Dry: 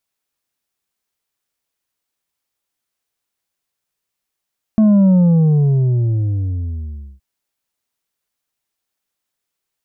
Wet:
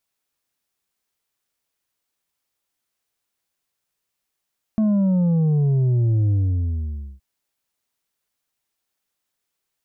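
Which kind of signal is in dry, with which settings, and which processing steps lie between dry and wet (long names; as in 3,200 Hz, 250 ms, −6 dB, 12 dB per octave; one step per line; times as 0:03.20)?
bass drop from 220 Hz, over 2.42 s, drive 5 dB, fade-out 2.12 s, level −8.5 dB
brickwall limiter −16 dBFS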